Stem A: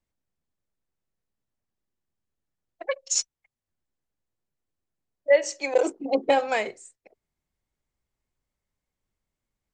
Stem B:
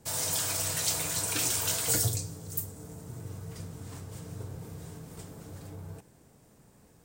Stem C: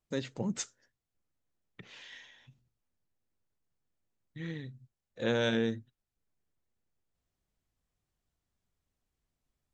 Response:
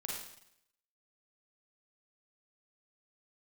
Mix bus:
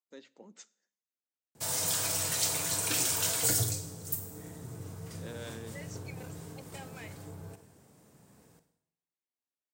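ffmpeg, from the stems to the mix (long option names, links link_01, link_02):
-filter_complex "[0:a]highpass=1200,alimiter=limit=-21dB:level=0:latency=1,adelay=450,volume=-17dB[link_01];[1:a]adelay=1550,volume=-3dB,asplit=2[link_02][link_03];[link_03]volume=-5.5dB[link_04];[2:a]highpass=frequency=250:width=0.5412,highpass=frequency=250:width=1.3066,volume=-15dB,asplit=2[link_05][link_06];[link_06]volume=-21.5dB[link_07];[3:a]atrim=start_sample=2205[link_08];[link_04][link_07]amix=inputs=2:normalize=0[link_09];[link_09][link_08]afir=irnorm=-1:irlink=0[link_10];[link_01][link_02][link_05][link_10]amix=inputs=4:normalize=0,highpass=91"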